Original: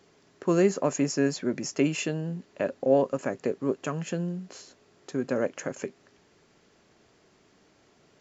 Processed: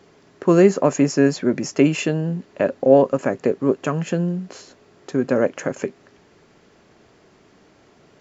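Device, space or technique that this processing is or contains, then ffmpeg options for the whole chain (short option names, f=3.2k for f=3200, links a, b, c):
behind a face mask: -af "highshelf=f=3.4k:g=-7,volume=9dB"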